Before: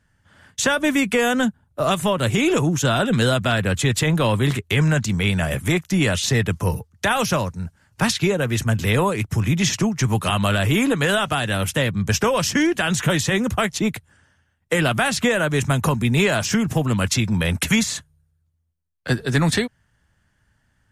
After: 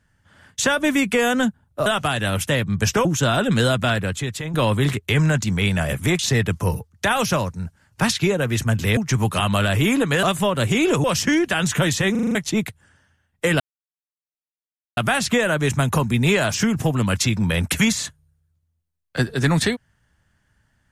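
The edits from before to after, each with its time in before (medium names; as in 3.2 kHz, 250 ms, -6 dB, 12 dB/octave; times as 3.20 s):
1.86–2.67 s: swap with 11.13–12.32 s
3.52–4.16 s: fade out quadratic, to -10 dB
5.81–6.19 s: delete
8.97–9.87 s: delete
13.39 s: stutter in place 0.04 s, 6 plays
14.88 s: insert silence 1.37 s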